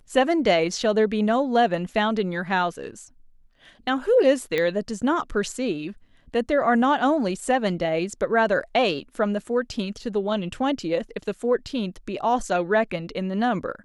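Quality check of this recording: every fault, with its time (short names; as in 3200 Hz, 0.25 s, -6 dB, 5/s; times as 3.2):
4.58 pop -12 dBFS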